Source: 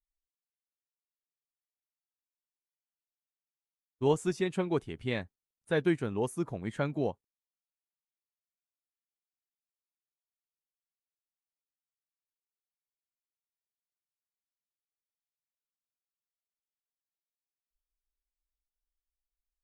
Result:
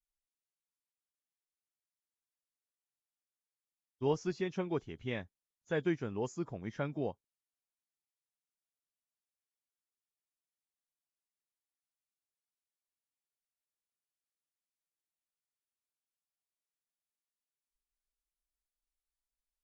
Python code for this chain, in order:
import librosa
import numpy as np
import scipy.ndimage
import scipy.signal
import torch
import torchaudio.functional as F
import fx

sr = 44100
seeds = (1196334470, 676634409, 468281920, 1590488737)

y = fx.freq_compress(x, sr, knee_hz=3100.0, ratio=1.5)
y = F.gain(torch.from_numpy(y), -5.0).numpy()